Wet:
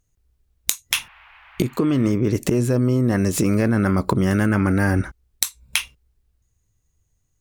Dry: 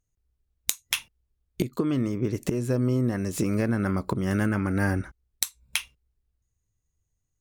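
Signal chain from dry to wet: in parallel at -2 dB: negative-ratio compressor -27 dBFS, ratio -0.5; 0.95–2.11 on the sum: band noise 790–2700 Hz -52 dBFS; gain +3 dB

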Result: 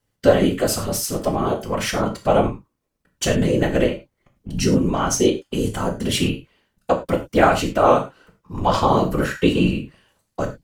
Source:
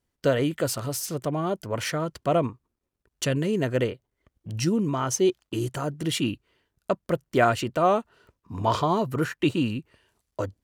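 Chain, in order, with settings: whisperiser; non-linear reverb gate 0.13 s falling, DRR 3 dB; gain +4.5 dB

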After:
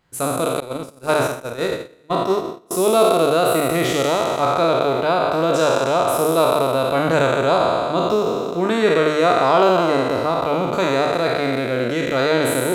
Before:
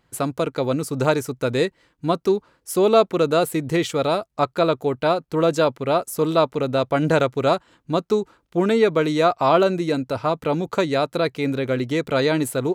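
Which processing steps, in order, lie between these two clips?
spectral trails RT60 2.60 s; notches 50/100/150/200/250/300/350/400/450/500 Hz; 0.6–2.71 gate -16 dBFS, range -27 dB; gain -1.5 dB

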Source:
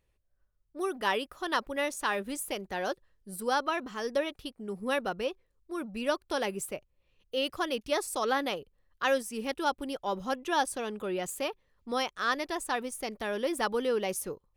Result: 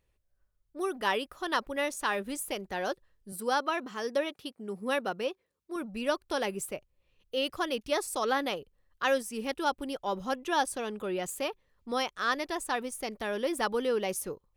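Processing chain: 3.32–5.76 HPF 150 Hz 12 dB/oct

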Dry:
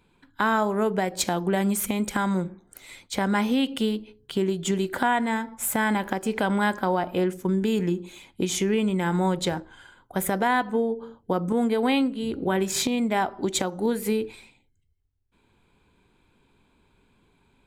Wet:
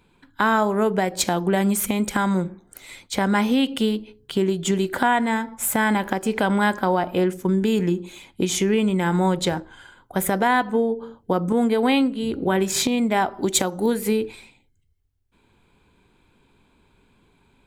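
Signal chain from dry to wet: 13.34–13.94 high shelf 9100 Hz +11 dB; gain +3.5 dB

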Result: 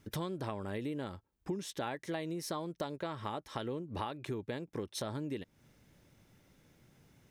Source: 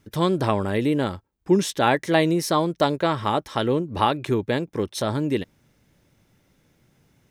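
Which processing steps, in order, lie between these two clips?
compressor 6:1, threshold -34 dBFS, peak gain reduction 19.5 dB; gain -2.5 dB

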